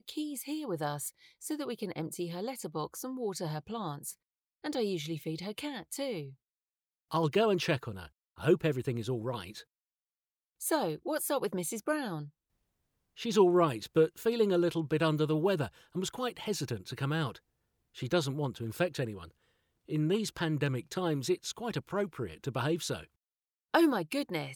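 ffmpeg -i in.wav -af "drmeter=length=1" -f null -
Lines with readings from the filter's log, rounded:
Channel 1: DR: 13.7
Overall DR: 13.7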